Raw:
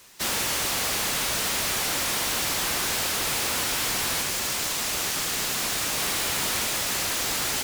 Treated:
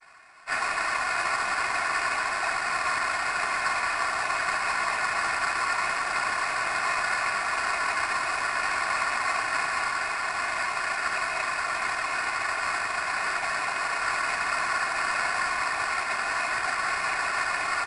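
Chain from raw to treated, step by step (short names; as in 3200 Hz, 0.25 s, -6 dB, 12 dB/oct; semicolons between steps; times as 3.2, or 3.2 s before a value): steep low-pass 5500 Hz 96 dB/oct; noise vocoder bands 16; speed mistake 78 rpm record played at 33 rpm; comb 2.8 ms, depth 95%; modulation noise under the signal 16 dB; HPF 950 Hz 24 dB/oct; in parallel at -3.5 dB: sample-rate reducer 3200 Hz, jitter 0%; on the sum: gain +1 dB; MP2 128 kbps 24000 Hz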